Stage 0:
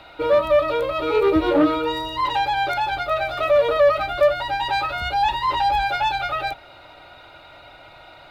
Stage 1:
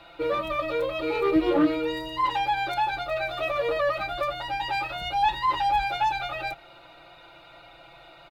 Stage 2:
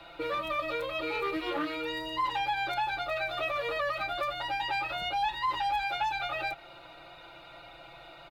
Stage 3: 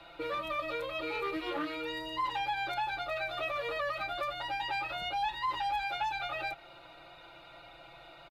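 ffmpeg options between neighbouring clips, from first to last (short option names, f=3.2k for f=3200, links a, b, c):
-af "aecho=1:1:5.9:0.84,volume=-6.5dB"
-filter_complex "[0:a]acrossover=split=200|970|4000[a][b][c][d];[a]acompressor=threshold=-52dB:ratio=4[e];[b]acompressor=threshold=-37dB:ratio=4[f];[c]acompressor=threshold=-31dB:ratio=4[g];[d]acompressor=threshold=-49dB:ratio=4[h];[e][f][g][h]amix=inputs=4:normalize=0"
-af "aresample=32000,aresample=44100,volume=-3dB"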